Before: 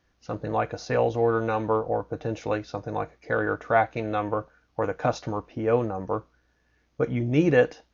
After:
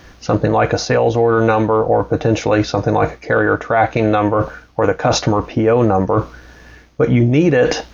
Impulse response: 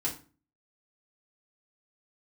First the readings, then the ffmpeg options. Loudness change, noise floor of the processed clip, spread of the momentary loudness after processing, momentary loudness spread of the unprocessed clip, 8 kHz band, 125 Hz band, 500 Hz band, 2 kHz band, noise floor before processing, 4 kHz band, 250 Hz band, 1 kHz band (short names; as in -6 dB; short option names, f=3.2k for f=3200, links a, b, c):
+11.0 dB, -44 dBFS, 5 LU, 10 LU, n/a, +13.0 dB, +10.5 dB, +10.5 dB, -69 dBFS, +17.5 dB, +12.5 dB, +10.5 dB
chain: -af "areverse,acompressor=threshold=-36dB:ratio=6,areverse,alimiter=level_in=30.5dB:limit=-1dB:release=50:level=0:latency=1,volume=-3dB"